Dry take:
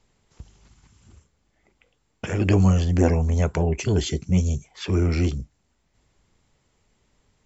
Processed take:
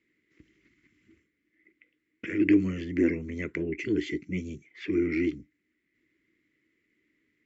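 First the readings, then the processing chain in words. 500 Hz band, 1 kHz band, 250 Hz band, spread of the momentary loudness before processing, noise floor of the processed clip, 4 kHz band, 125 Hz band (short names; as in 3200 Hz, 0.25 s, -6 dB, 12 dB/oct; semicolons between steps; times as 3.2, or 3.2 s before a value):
-5.5 dB, under -20 dB, -2.0 dB, 10 LU, -78 dBFS, -11.5 dB, -18.0 dB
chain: double band-pass 800 Hz, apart 2.7 oct; gain +6.5 dB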